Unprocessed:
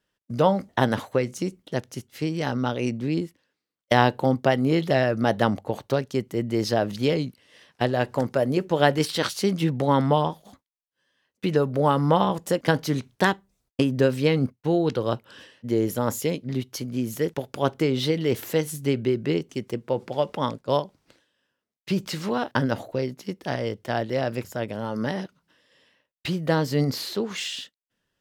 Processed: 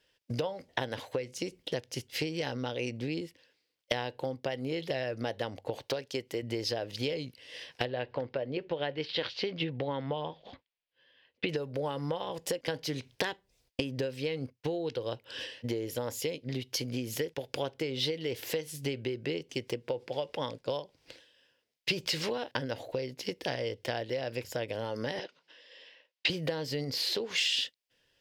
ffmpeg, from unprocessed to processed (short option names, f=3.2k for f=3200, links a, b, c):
-filter_complex "[0:a]asettb=1/sr,asplit=3[a][b][c];[a]atrim=end=5.844[d];[b]atrim=start=5.84:end=6.43,asetpts=PTS-STARTPTS,afade=t=in:d=0.004:c=qsin,afade=t=out:st=0.586:d=0.004:c=qsin,lowshelf=f=190:g=-9.5[e];[c]atrim=start=6.426[f];[d][e]acrossfade=d=0.004:c1=hsin:c2=qsin[g];[g][f]acrossfade=d=0.004:c1=qsin:c2=hsin,asettb=1/sr,asplit=3[h][i][j];[h]atrim=end=7.854[k];[i]atrim=start=7.85:end=11.49,asetpts=PTS-STARTPTS,afade=t=in:d=0.004:c=qsin,afade=t=out:st=3.636:d=0.004:c=qsin,lowpass=f=3.8k:w=0.5412,lowpass=f=3.8k:w=1.3066[l];[j]atrim=start=11.486[m];[k][l]acrossfade=d=0.004:c1=hsin:c2=qsin[n];[n][m]acrossfade=d=0.004:c1=qsin:c2=hsin,asettb=1/sr,asplit=3[o][p][q];[o]atrim=end=25.194[r];[p]atrim=start=25.19:end=26.3,asetpts=PTS-STARTPTS,afade=t=in:d=0.004:c=qsin,afade=t=out:st=1.106:d=0.004:c=qsin,highpass=350,lowpass=5.3k[s];[q]atrim=start=26.296[t];[r][s]acrossfade=d=0.004:c1=hsin:c2=qsin[u];[u][t]acrossfade=d=0.004:c1=qsin:c2=hsin,equalizer=f=200:t=o:w=0.33:g=-12,equalizer=f=500:t=o:w=0.33:g=7,equalizer=f=1.25k:t=o:w=0.33:g=-8,equalizer=f=5k:t=o:w=0.33:g=6,acompressor=threshold=-33dB:ratio=12,equalizer=f=2.8k:t=o:w=1.4:g=8,volume=2dB"